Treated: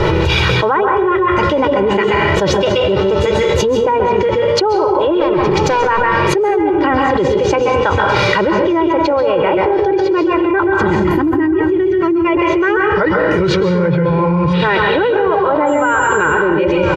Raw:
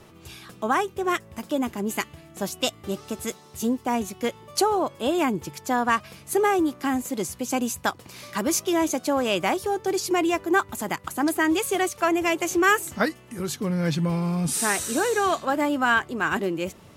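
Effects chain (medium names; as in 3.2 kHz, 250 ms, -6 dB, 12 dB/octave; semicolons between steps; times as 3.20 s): 10.81–12.24 s: time-frequency box 400–11000 Hz -16 dB; 14.53–15.09 s: resonant high shelf 4.7 kHz -11.5 dB, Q 3; low-pass that closes with the level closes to 1.8 kHz, closed at -20 dBFS; comb 2.1 ms, depth 93%; in parallel at -2.5 dB: peak limiter -19 dBFS, peak gain reduction 10.5 dB; 5.20–5.87 s: on the sum: hard clipper -21.5 dBFS, distortion -21 dB; 15.66–16.17 s: whistle 7.3 kHz -22 dBFS; distance through air 250 m; echo from a far wall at 160 m, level -20 dB; on a send at -2 dB: reverberation RT60 0.60 s, pre-delay 124 ms; on the sum: level flattener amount 100%; trim -1.5 dB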